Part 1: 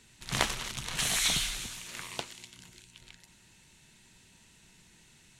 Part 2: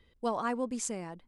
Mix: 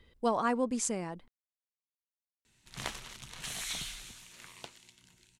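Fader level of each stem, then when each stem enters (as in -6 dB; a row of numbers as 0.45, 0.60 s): -10.0, +2.5 dB; 2.45, 0.00 s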